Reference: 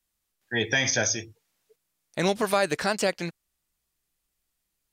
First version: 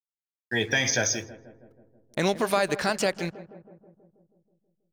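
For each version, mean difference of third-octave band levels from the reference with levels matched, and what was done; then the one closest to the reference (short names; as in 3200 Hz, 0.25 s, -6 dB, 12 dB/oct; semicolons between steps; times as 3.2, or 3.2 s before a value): 3.0 dB: in parallel at 0 dB: compressor 12:1, threshold -33 dBFS, peak gain reduction 15.5 dB; on the sum: backlash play -41 dBFS; notch 7900 Hz, Q 19; darkening echo 0.161 s, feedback 67%, low-pass 1200 Hz, level -14.5 dB; gain -2 dB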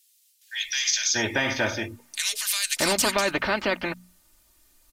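17.0 dB: notches 60/120/180/240 Hz; comb 3.3 ms, depth 71%; bands offset in time highs, lows 0.63 s, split 2600 Hz; spectral compressor 2:1; gain +1 dB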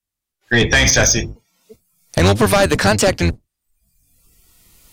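5.0 dB: octaver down 1 oct, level +2 dB; recorder AGC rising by 9.2 dB/s; spectral noise reduction 19 dB; sine folder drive 9 dB, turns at -7 dBFS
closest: first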